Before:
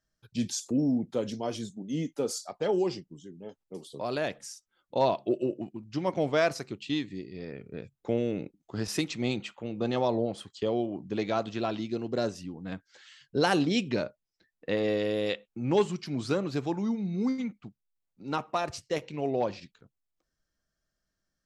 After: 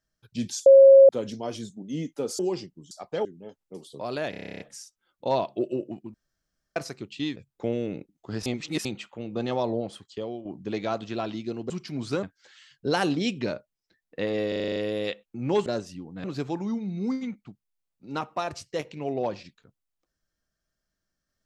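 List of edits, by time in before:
0.66–1.09 s: bleep 543 Hz -8.5 dBFS
2.39–2.73 s: move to 3.25 s
4.30 s: stutter 0.03 s, 11 plays
5.84–6.46 s: room tone
7.06–7.81 s: delete
8.91–9.30 s: reverse
10.33–10.90 s: fade out, to -10 dB
12.15–12.73 s: swap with 15.88–16.41 s
14.98 s: stutter 0.04 s, 8 plays

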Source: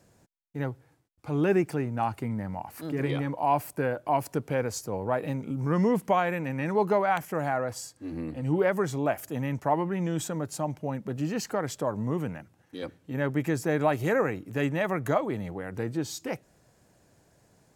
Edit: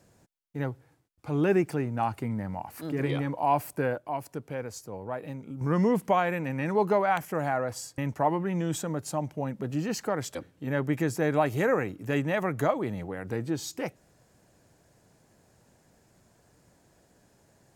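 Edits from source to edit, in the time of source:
3.98–5.61 s: gain -7 dB
7.98–9.44 s: delete
11.81–12.82 s: delete

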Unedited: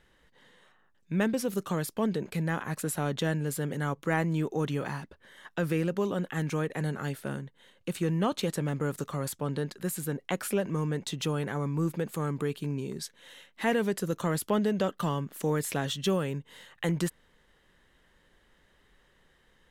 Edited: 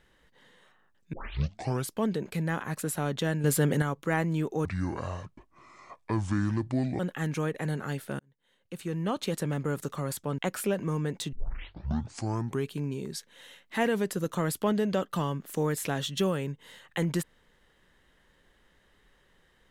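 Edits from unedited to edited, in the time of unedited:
1.13 s: tape start 0.79 s
3.44–3.82 s: gain +7.5 dB
4.65–6.15 s: speed 64%
7.35–8.56 s: fade in
9.54–10.25 s: delete
11.19 s: tape start 1.36 s

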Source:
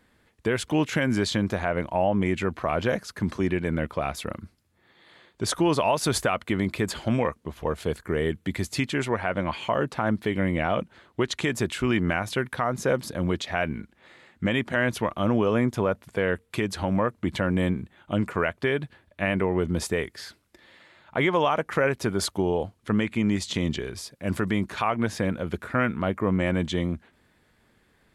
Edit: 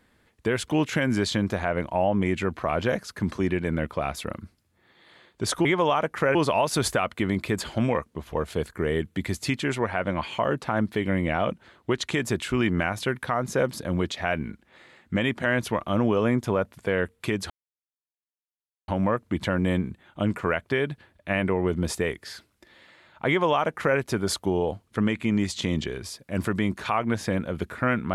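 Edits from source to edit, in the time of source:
16.80 s: insert silence 1.38 s
21.20–21.90 s: copy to 5.65 s

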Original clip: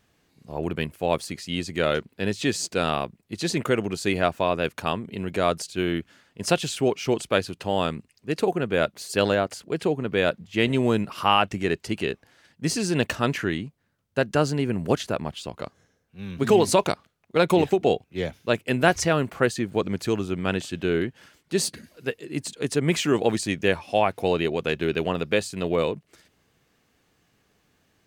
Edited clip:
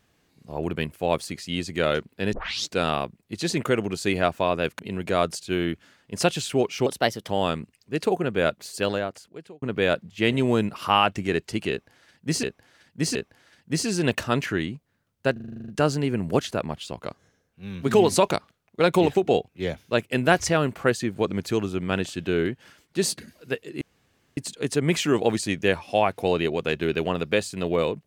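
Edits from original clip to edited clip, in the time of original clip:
2.33 s: tape start 0.38 s
4.79–5.06 s: delete
7.13–7.66 s: speed 120%
8.85–9.98 s: fade out
12.07–12.79 s: loop, 3 plays
14.24 s: stutter 0.04 s, 10 plays
22.37 s: insert room tone 0.56 s

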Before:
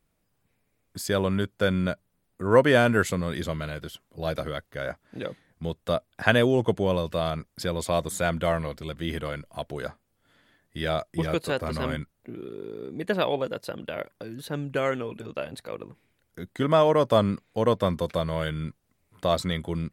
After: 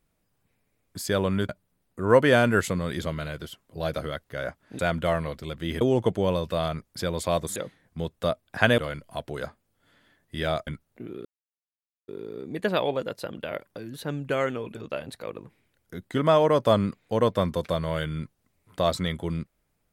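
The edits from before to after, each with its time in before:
1.49–1.91 s: delete
5.21–6.43 s: swap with 8.18–9.20 s
11.09–11.95 s: delete
12.53 s: insert silence 0.83 s

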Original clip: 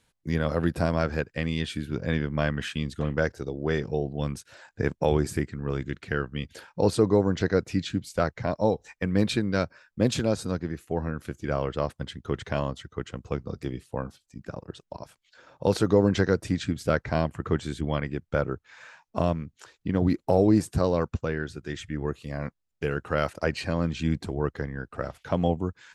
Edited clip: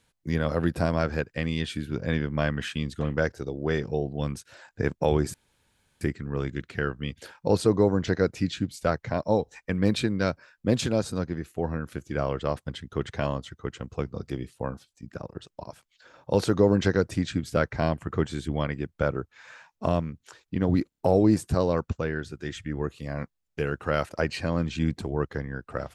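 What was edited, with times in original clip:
5.34 s: insert room tone 0.67 s
20.22 s: stutter 0.03 s, 4 plays

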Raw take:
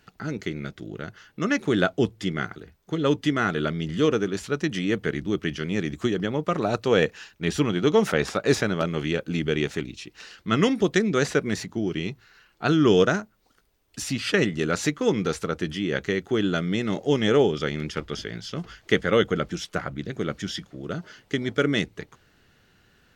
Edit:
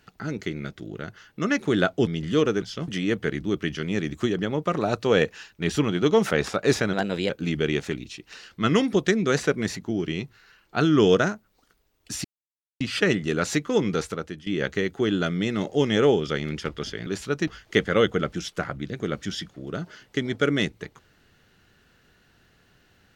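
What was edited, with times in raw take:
2.07–3.73 s: delete
4.28–4.69 s: swap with 18.38–18.64 s
8.74–9.17 s: speed 118%
14.12 s: insert silence 0.56 s
15.32–15.78 s: fade out, to -17 dB

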